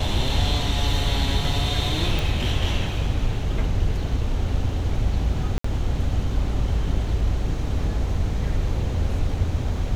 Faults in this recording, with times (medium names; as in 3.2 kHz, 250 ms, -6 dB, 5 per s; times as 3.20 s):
2.19 s: pop
5.58–5.64 s: dropout 64 ms